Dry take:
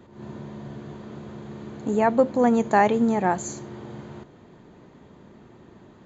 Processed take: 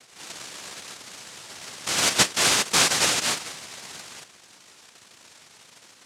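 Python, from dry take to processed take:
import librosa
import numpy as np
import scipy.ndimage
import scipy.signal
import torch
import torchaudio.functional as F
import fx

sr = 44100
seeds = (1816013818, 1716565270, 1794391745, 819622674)

y = fx.low_shelf(x, sr, hz=130.0, db=-7.0, at=(0.94, 1.61))
y = fx.noise_vocoder(y, sr, seeds[0], bands=1)
y = y * 10.0 ** (-2.0 / 20.0)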